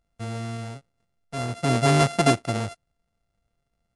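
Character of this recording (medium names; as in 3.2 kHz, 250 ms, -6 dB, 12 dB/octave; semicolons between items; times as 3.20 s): a buzz of ramps at a fixed pitch in blocks of 64 samples; MP3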